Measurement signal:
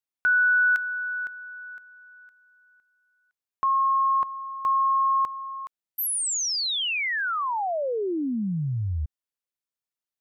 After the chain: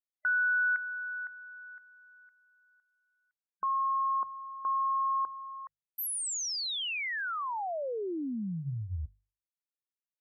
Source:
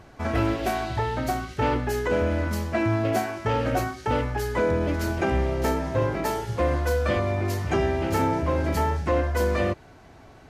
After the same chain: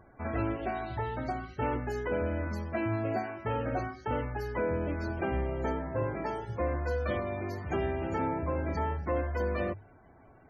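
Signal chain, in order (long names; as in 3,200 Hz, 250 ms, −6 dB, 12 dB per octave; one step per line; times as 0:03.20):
mains-hum notches 50/100/150 Hz
spectral peaks only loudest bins 64
level −7.5 dB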